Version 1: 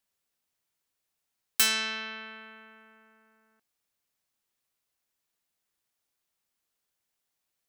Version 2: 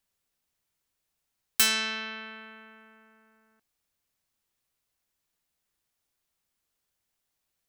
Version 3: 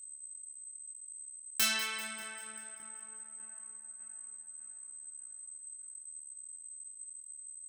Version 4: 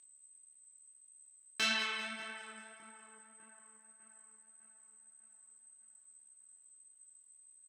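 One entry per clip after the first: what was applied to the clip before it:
low-shelf EQ 120 Hz +9 dB; level +1 dB
steady tone 8,200 Hz −39 dBFS; multi-voice chorus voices 6, 0.44 Hz, delay 27 ms, depth 3.4 ms; echo with a time of its own for lows and highs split 1,600 Hz, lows 601 ms, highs 196 ms, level −13 dB; level −3 dB
flanger 1.7 Hz, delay 3.1 ms, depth 7.7 ms, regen +50%; band-pass filter 130–4,100 Hz; double-tracking delay 27 ms −13.5 dB; level +5 dB

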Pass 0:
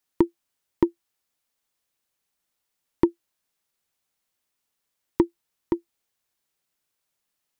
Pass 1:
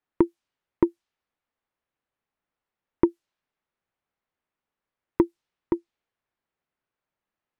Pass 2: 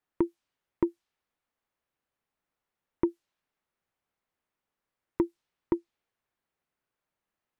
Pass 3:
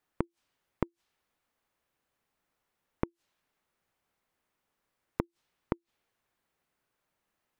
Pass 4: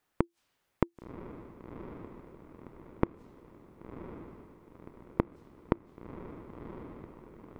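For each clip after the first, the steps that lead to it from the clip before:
low-pass that shuts in the quiet parts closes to 1,900 Hz, open at −20.5 dBFS
brickwall limiter −14.5 dBFS, peak gain reduction 8 dB
gate with flip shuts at −22 dBFS, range −31 dB; level +5.5 dB
feedback delay with all-pass diffusion 1,059 ms, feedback 54%, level −9.5 dB; level +3.5 dB

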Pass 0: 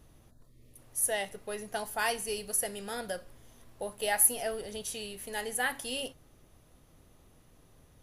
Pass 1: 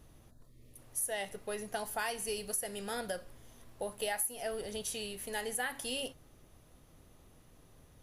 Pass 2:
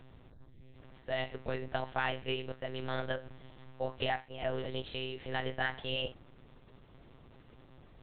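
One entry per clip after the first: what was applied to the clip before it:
downward compressor 6 to 1, threshold −32 dBFS, peak gain reduction 13.5 dB
one-pitch LPC vocoder at 8 kHz 130 Hz; level +3 dB

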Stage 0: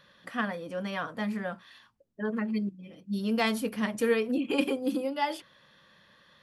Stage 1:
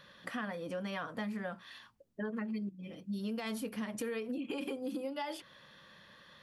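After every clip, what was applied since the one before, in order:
brickwall limiter −22 dBFS, peak gain reduction 9 dB
downward compressor 4 to 1, threshold −39 dBFS, peak gain reduction 11.5 dB
level +2 dB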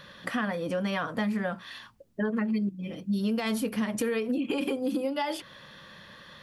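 low-shelf EQ 170 Hz +3.5 dB
level +8.5 dB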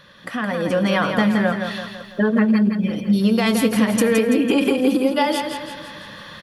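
automatic gain control gain up to 10.5 dB
repeating echo 167 ms, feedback 51%, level −6.5 dB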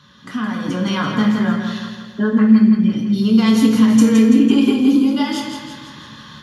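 convolution reverb RT60 0.70 s, pre-delay 3 ms, DRR 1 dB
level −7 dB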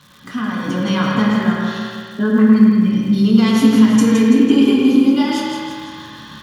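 surface crackle 280 per second −36 dBFS
delay with a low-pass on its return 107 ms, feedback 57%, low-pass 3,600 Hz, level −3.5 dB

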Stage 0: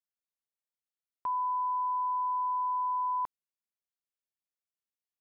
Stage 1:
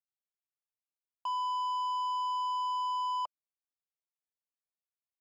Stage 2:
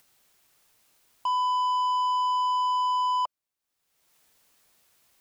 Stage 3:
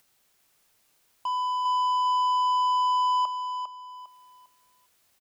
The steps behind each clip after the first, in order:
elliptic band-pass filter 600–1,200 Hz; leveller curve on the samples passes 2; level −3 dB
upward compression, threshold −52 dBFS; level +7.5 dB
repeating echo 402 ms, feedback 29%, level −7 dB; level −2.5 dB

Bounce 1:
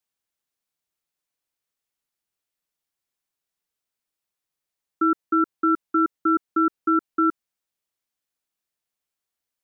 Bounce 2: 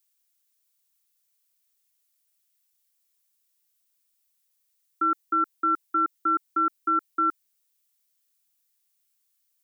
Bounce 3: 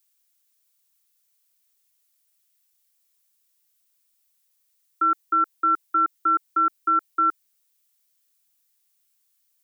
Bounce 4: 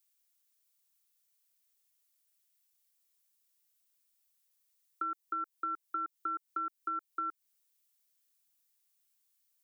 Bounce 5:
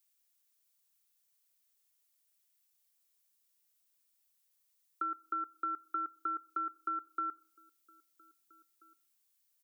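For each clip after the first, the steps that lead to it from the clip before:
spectral tilt +4.5 dB per octave; level −3 dB
high-pass filter 410 Hz; level +3.5 dB
downward compressor 6 to 1, threshold −28 dBFS, peak gain reduction 10 dB; level −6.5 dB
slap from a distant wall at 280 metres, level −23 dB; four-comb reverb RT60 0.58 s, combs from 28 ms, DRR 19.5 dB

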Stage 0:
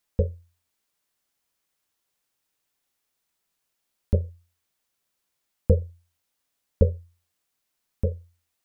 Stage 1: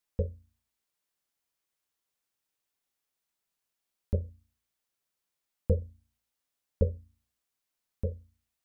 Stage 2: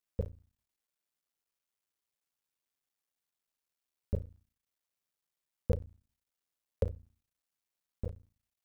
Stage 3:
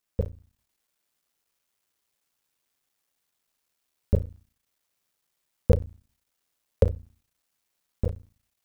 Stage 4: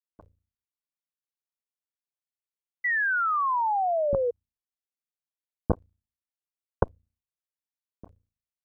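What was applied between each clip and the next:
hum removal 56.22 Hz, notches 5; level −7 dB
sub-harmonics by changed cycles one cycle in 3, muted; level −3.5 dB
automatic gain control gain up to 4 dB; level +7 dB
harmonic generator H 3 −9 dB, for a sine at −4.5 dBFS; sound drawn into the spectrogram fall, 0:02.84–0:04.31, 470–2,000 Hz −25 dBFS

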